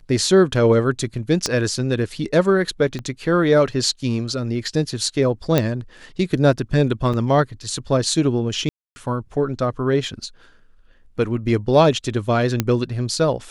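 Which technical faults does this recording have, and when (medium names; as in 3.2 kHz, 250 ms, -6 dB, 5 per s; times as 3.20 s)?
1.46 s: pop -7 dBFS
2.99 s: pop -17 dBFS
5.58 s: pop -3 dBFS
7.13–7.14 s: dropout 6 ms
8.69–8.96 s: dropout 270 ms
12.60 s: pop -4 dBFS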